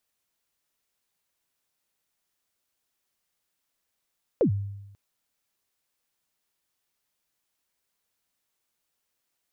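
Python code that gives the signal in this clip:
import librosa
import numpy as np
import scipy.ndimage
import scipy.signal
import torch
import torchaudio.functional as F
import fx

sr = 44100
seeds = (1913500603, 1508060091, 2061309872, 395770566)

y = fx.drum_kick(sr, seeds[0], length_s=0.54, level_db=-16, start_hz=570.0, end_hz=100.0, sweep_ms=96.0, decay_s=0.98, click=False)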